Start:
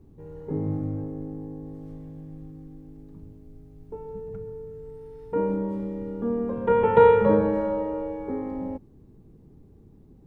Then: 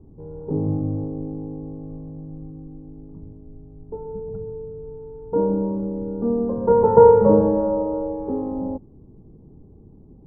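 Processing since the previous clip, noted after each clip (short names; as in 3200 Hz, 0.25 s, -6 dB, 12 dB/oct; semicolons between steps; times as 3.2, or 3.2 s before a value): LPF 1000 Hz 24 dB/oct; gain +5 dB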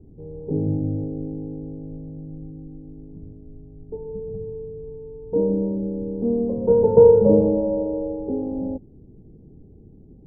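EQ curve 460 Hz 0 dB, 760 Hz -4 dB, 1200 Hz -23 dB, 1700 Hz -16 dB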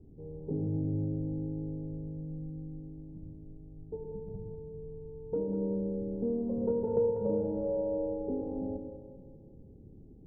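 compressor 4:1, threshold -23 dBFS, peak gain reduction 13.5 dB; split-band echo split 420 Hz, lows 0.115 s, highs 0.194 s, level -7 dB; gain -7 dB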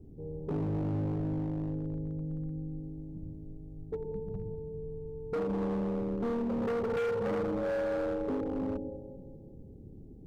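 hard clip -32.5 dBFS, distortion -9 dB; gain +3.5 dB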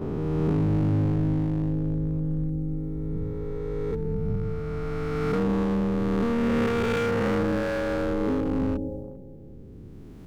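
spectral swells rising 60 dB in 2.81 s; gate -41 dBFS, range -7 dB; dynamic EQ 630 Hz, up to -7 dB, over -43 dBFS, Q 0.76; gain +8.5 dB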